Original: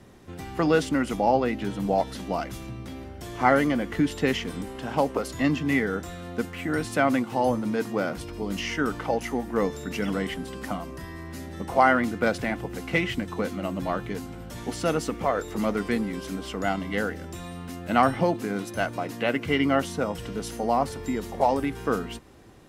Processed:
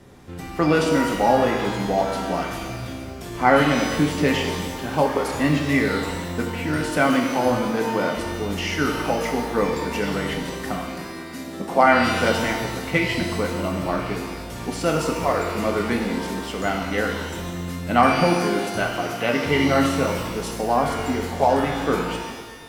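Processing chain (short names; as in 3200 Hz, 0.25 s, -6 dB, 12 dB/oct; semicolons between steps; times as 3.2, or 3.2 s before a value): 10.87–11.85 resonant low shelf 130 Hz -12.5 dB, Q 1.5; shimmer reverb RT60 1.4 s, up +12 st, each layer -8 dB, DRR 1 dB; gain +2 dB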